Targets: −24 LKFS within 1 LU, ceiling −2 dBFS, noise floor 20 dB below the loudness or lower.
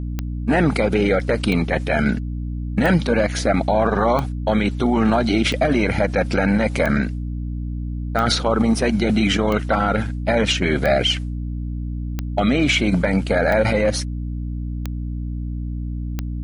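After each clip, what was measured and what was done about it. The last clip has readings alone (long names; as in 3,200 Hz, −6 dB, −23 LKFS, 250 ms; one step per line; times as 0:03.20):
number of clicks 13; mains hum 60 Hz; hum harmonics up to 300 Hz; level of the hum −24 dBFS; integrated loudness −20.5 LKFS; sample peak −5.5 dBFS; target loudness −24.0 LKFS
→ click removal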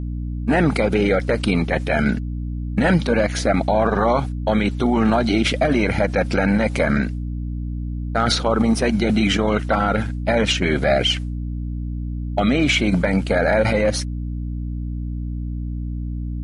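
number of clicks 0; mains hum 60 Hz; hum harmonics up to 300 Hz; level of the hum −24 dBFS
→ mains-hum notches 60/120/180/240/300 Hz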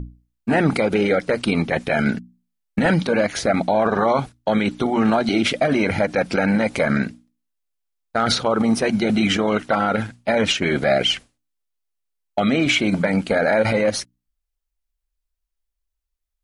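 mains hum none found; integrated loudness −20.0 LKFS; sample peak −6.0 dBFS; target loudness −24.0 LKFS
→ level −4 dB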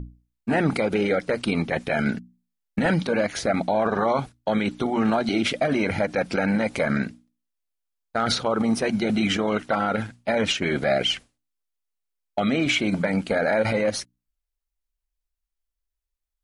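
integrated loudness −24.0 LKFS; sample peak −10.0 dBFS; background noise floor −83 dBFS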